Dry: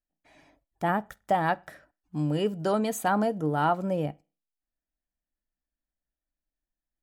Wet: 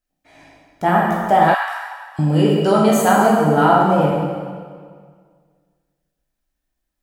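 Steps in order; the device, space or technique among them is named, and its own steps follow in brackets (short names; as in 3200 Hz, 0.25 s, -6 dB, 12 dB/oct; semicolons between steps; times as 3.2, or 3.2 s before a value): stairwell (reverb RT60 1.8 s, pre-delay 10 ms, DRR -5 dB); 1.54–2.19 HPF 1000 Hz 24 dB/oct; gain +6.5 dB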